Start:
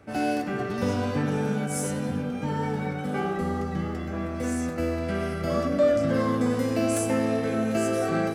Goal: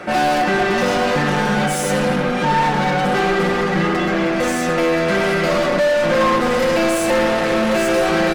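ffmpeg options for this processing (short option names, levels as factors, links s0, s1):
-filter_complex "[0:a]asplit=2[s0][s1];[s1]highpass=f=720:p=1,volume=39.8,asoftclip=type=tanh:threshold=0.266[s2];[s0][s2]amix=inputs=2:normalize=0,lowpass=f=2900:p=1,volume=0.501,aecho=1:1:5.6:0.72"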